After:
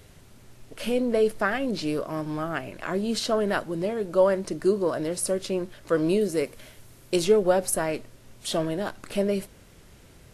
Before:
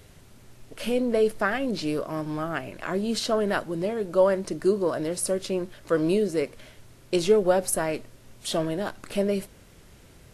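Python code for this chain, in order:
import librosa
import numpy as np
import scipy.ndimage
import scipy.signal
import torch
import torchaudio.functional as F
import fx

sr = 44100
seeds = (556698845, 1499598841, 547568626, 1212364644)

y = fx.high_shelf(x, sr, hz=10000.0, db=11.5, at=(6.21, 7.25))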